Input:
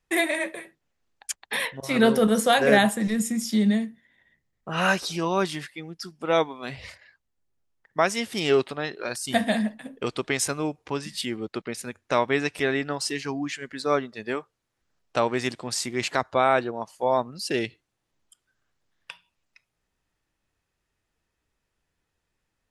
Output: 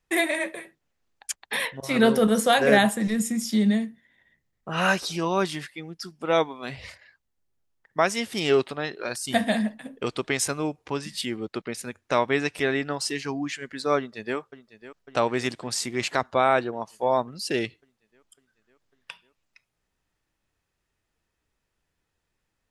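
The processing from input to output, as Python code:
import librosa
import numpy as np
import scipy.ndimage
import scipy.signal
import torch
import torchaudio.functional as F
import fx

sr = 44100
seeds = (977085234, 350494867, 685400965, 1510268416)

y = fx.echo_throw(x, sr, start_s=13.97, length_s=0.4, ms=550, feedback_pct=70, wet_db=-15.0)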